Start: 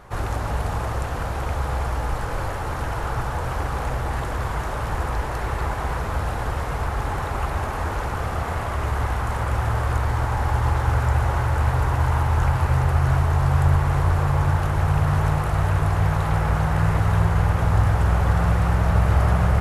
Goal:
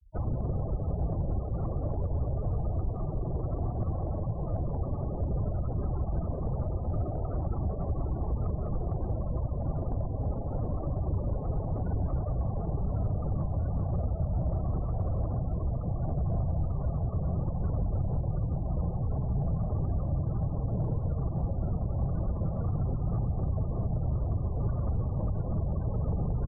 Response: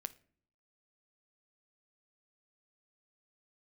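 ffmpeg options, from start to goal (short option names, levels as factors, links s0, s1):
-filter_complex "[0:a]acrossover=split=280|710[s0][s1][s2];[s0]acompressor=threshold=0.0891:ratio=4[s3];[s1]acompressor=threshold=0.00891:ratio=4[s4];[s2]acompressor=threshold=0.0141:ratio=4[s5];[s3][s4][s5]amix=inputs=3:normalize=0,afftfilt=real='hypot(re,im)*cos(2*PI*random(0))':imag='hypot(re,im)*sin(2*PI*random(1))':win_size=512:overlap=0.75,afftfilt=real='re*gte(hypot(re,im),0.0178)':imag='im*gte(hypot(re,im),0.0178)':win_size=1024:overlap=0.75,equalizer=f=240:t=o:w=2.4:g=4,aecho=1:1:132:0.2,alimiter=limit=0.075:level=0:latency=1:release=132,asetrate=32667,aresample=44100,equalizer=f=940:t=o:w=0.22:g=-11.5,asoftclip=type=tanh:threshold=0.0596,volume=1.5"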